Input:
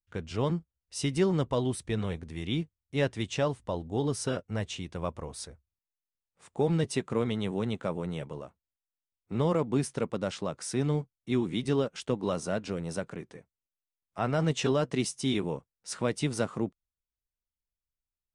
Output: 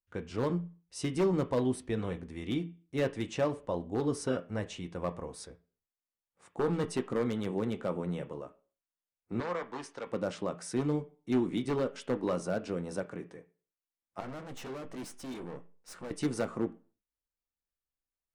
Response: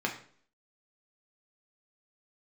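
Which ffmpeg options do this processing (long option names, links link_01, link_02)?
-filter_complex "[0:a]aeval=exprs='0.0944*(abs(mod(val(0)/0.0944+3,4)-2)-1)':channel_layout=same,asettb=1/sr,asplit=3[link_01][link_02][link_03];[link_01]atrim=end=9.404[link_04];[link_02]atrim=start=9.4:end=10.07,asetpts=PTS-STARTPTS,afade=type=in:duration=0.004:curve=qsin,afade=type=out:start_time=0.666:duration=0.004:curve=qsin,acrossover=split=590 7600:gain=0.141 1 0.0631[link_05][link_06][link_07];[link_05][link_06][link_07]amix=inputs=3:normalize=0[link_08];[link_03]atrim=start=10.066[link_09];[link_04][link_08]acrossfade=duration=0.004:curve1=hsin:curve2=qsin[link_10];[link_10][link_09]acrossfade=duration=0.004:curve1=qsin:curve2=hsin,asettb=1/sr,asplit=3[link_11][link_12][link_13];[link_11]atrim=end=14.204[link_14];[link_12]atrim=start=14.2:end=16.11,asetpts=PTS-STARTPTS,afade=type=in:duration=0.004:curve=qsin,afade=type=out:start_time=1.906:duration=0.004:curve=qsin,aeval=exprs='(tanh(79.4*val(0)+0.75)-tanh(0.75))/79.4':channel_layout=same[link_15];[link_13]atrim=start=16.106[link_16];[link_14][link_15]acrossfade=duration=0.004:curve1=hsin:curve2=qsin[link_17];[link_17][link_16]acrossfade=duration=0.004:curve1=qsin:curve2=hsin,asplit=2[link_18][link_19];[1:a]atrim=start_sample=2205,asetrate=61740,aresample=44100,lowpass=2600[link_20];[link_19][link_20]afir=irnorm=-1:irlink=0,volume=-6dB[link_21];[link_18][link_21]amix=inputs=2:normalize=0,volume=-5.5dB"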